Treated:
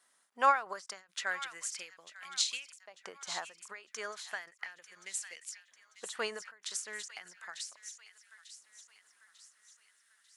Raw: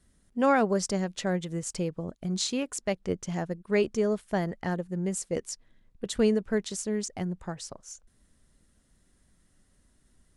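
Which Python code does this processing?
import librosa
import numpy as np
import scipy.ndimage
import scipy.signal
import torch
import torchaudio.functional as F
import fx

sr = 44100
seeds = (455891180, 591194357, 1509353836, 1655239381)

y = fx.filter_lfo_highpass(x, sr, shape='saw_up', hz=0.35, low_hz=890.0, high_hz=2800.0, q=1.7)
y = fx.echo_wet_highpass(y, sr, ms=895, feedback_pct=46, hz=1800.0, wet_db=-13.0)
y = fx.end_taper(y, sr, db_per_s=160.0)
y = y * 10.0 ** (1.0 / 20.0)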